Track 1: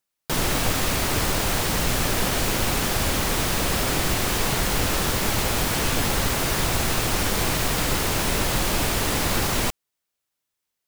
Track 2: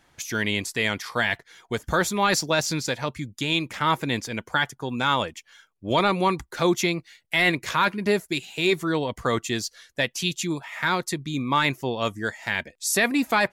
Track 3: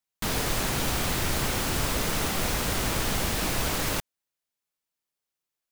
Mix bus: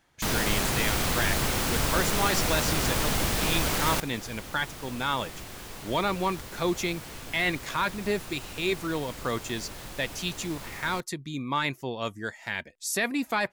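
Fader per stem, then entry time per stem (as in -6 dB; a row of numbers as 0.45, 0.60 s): -18.5, -6.0, +0.5 dB; 1.30, 0.00, 0.00 s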